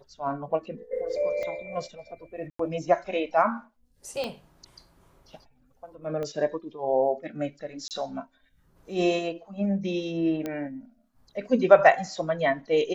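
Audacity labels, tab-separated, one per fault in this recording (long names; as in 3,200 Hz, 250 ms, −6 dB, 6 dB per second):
1.430000	1.430000	click −23 dBFS
2.500000	2.590000	drop-out 94 ms
4.240000	4.240000	click −19 dBFS
6.230000	6.230000	click −22 dBFS
7.880000	7.910000	drop-out 28 ms
10.460000	10.460000	click −18 dBFS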